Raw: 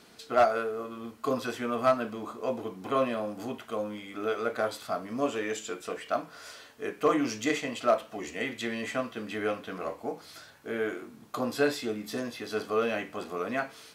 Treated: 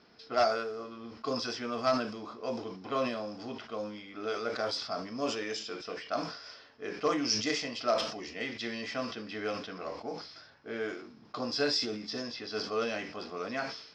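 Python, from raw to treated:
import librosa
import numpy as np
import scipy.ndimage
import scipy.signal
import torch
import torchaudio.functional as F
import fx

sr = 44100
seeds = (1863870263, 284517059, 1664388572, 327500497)

y = fx.env_lowpass(x, sr, base_hz=2000.0, full_db=-24.0)
y = fx.lowpass_res(y, sr, hz=5200.0, q=13.0)
y = fx.sustainer(y, sr, db_per_s=77.0)
y = y * 10.0 ** (-5.0 / 20.0)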